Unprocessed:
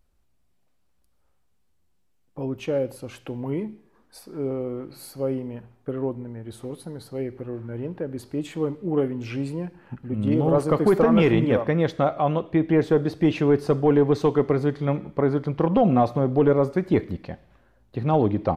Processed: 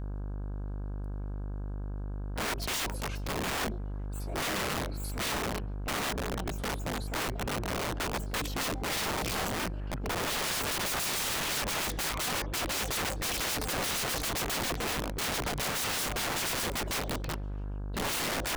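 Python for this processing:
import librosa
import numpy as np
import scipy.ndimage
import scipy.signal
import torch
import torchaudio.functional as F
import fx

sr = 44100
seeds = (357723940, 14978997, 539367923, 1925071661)

y = fx.pitch_trill(x, sr, semitones=9.5, every_ms=70)
y = fx.dmg_buzz(y, sr, base_hz=50.0, harmonics=33, level_db=-36.0, tilt_db=-8, odd_only=False)
y = (np.mod(10.0 ** (27.0 / 20.0) * y + 1.0, 2.0) - 1.0) / 10.0 ** (27.0 / 20.0)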